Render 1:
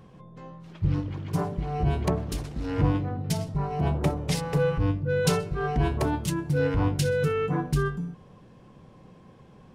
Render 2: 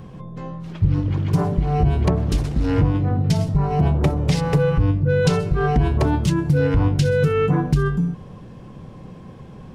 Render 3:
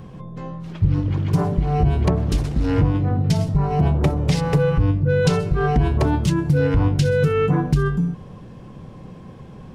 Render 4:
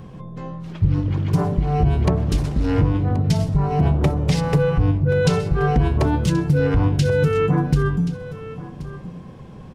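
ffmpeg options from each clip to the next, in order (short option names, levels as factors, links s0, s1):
-filter_complex "[0:a]acrossover=split=7100[s0][s1];[s1]acompressor=threshold=0.00316:ratio=4:attack=1:release=60[s2];[s0][s2]amix=inputs=2:normalize=0,lowshelf=f=230:g=6.5,acompressor=threshold=0.0708:ratio=4,volume=2.66"
-af anull
-af "aecho=1:1:1078:0.168"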